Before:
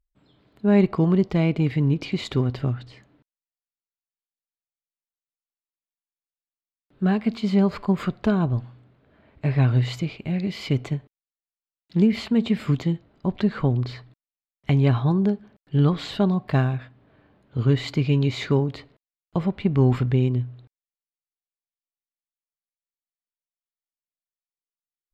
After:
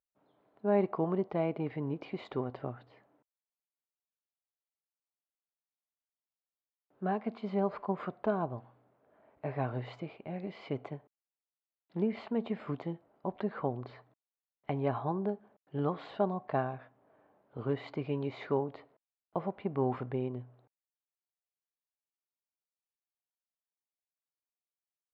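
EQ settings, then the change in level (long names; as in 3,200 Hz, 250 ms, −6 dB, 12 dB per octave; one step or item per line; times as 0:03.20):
resonant band-pass 730 Hz, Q 1.4
high-frequency loss of the air 69 metres
−1.5 dB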